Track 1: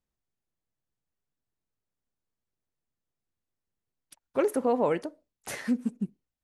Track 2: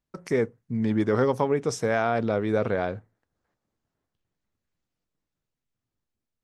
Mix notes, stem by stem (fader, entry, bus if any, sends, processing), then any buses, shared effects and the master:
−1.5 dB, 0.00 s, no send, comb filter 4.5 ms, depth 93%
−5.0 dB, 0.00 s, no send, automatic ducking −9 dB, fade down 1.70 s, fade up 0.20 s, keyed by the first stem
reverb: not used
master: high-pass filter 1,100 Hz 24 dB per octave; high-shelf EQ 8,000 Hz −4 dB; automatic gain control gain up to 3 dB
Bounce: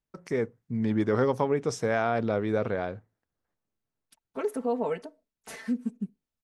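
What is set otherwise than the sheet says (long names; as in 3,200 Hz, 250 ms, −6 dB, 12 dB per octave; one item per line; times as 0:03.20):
stem 1 −1.5 dB → −10.0 dB
master: missing high-pass filter 1,100 Hz 24 dB per octave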